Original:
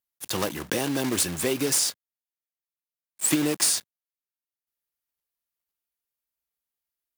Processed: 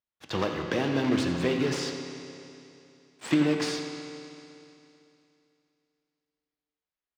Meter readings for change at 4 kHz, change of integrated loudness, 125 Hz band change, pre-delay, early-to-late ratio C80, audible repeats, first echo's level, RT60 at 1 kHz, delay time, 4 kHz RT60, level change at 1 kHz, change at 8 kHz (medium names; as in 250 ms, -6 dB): -5.5 dB, -4.0 dB, +2.5 dB, 7 ms, 5.0 dB, 1, -13.0 dB, 2.8 s, 86 ms, 2.8 s, +0.5 dB, -18.0 dB